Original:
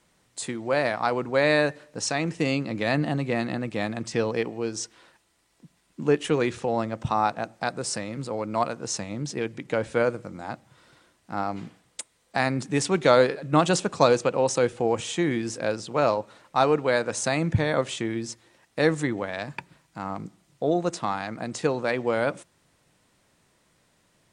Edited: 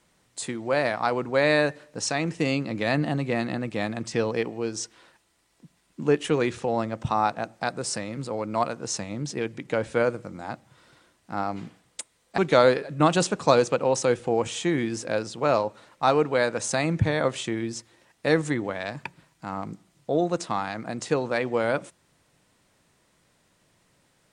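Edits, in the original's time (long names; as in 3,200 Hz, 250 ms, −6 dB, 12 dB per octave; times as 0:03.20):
0:12.38–0:12.91: remove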